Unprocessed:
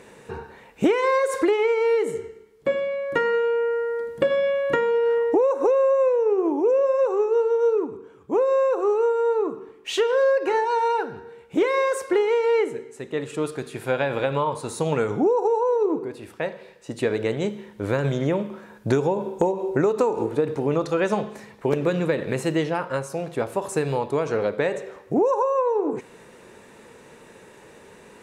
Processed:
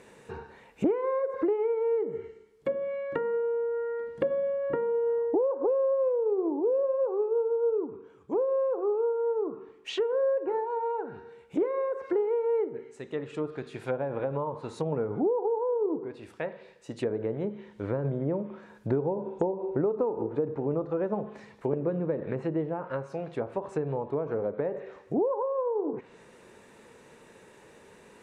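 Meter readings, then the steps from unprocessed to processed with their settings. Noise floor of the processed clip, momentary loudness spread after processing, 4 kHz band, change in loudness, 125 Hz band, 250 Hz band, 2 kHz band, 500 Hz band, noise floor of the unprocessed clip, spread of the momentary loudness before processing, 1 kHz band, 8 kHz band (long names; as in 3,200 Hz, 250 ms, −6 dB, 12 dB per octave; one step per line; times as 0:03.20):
−55 dBFS, 11 LU, −12.0 dB, −7.0 dB, −6.0 dB, −6.0 dB, −15.5 dB, −6.5 dB, −49 dBFS, 11 LU, −10.0 dB, below −15 dB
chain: treble cut that deepens with the level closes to 820 Hz, closed at −20 dBFS
level −6 dB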